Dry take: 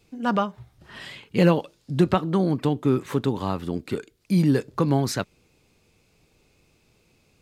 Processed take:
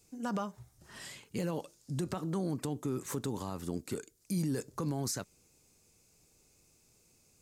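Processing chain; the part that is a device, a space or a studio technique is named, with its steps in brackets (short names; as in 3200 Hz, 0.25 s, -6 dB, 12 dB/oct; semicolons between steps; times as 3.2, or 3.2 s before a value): over-bright horn tweeter (resonant high shelf 4800 Hz +11.5 dB, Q 1.5; limiter -17.5 dBFS, peak gain reduction 11.5 dB); gain -8 dB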